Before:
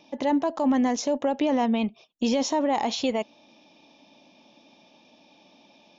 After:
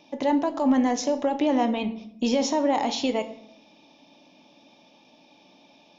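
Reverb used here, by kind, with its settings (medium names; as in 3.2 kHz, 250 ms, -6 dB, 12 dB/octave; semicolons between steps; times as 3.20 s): simulated room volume 150 m³, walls mixed, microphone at 0.36 m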